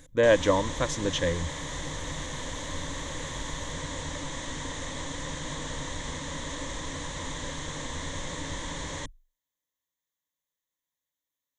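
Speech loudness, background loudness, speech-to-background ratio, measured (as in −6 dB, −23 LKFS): −26.0 LKFS, −35.5 LKFS, 9.5 dB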